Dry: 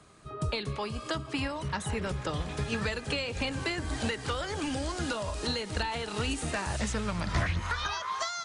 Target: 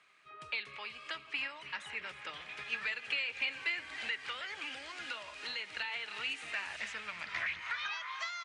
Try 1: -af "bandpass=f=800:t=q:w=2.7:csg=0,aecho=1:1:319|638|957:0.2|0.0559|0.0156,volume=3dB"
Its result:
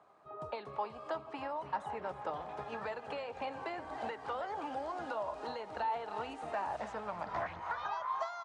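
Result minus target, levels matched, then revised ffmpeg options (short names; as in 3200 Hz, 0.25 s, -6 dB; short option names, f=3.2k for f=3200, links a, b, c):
1000 Hz band +11.5 dB
-af "bandpass=f=2.3k:t=q:w=2.7:csg=0,aecho=1:1:319|638|957:0.2|0.0559|0.0156,volume=3dB"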